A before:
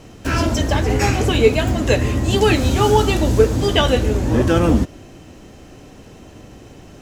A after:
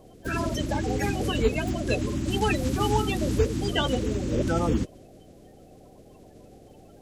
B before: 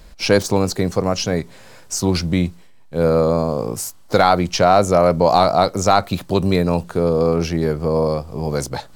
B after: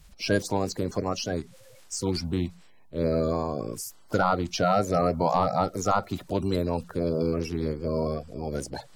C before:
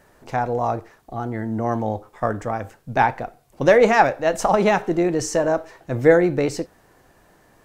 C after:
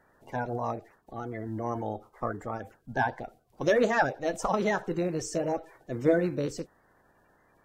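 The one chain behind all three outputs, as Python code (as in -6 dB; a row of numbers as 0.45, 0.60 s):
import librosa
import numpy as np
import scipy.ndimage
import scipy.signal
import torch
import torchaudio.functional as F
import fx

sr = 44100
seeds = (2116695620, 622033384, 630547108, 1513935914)

y = fx.spec_quant(x, sr, step_db=30)
y = F.gain(torch.from_numpy(y), -9.0).numpy()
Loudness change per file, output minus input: -9.5, -9.5, -10.0 LU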